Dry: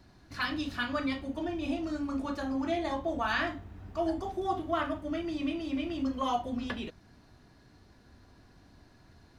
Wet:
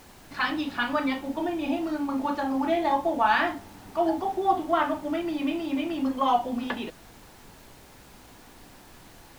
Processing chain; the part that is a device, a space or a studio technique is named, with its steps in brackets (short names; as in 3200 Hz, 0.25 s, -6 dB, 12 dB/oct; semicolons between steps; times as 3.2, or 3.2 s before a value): horn gramophone (BPF 190–3800 Hz; bell 860 Hz +10.5 dB 0.24 oct; wow and flutter 23 cents; pink noise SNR 23 dB); gain +5.5 dB